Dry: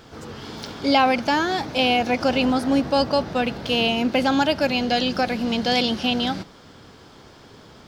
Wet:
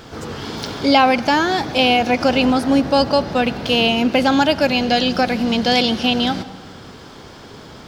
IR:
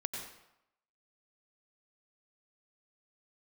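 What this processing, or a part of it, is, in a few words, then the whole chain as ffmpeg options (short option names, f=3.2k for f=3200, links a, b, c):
compressed reverb return: -filter_complex "[0:a]asplit=2[a][b];[1:a]atrim=start_sample=2205[c];[b][c]afir=irnorm=-1:irlink=0,acompressor=threshold=-30dB:ratio=6,volume=-3.5dB[d];[a][d]amix=inputs=2:normalize=0,volume=3.5dB"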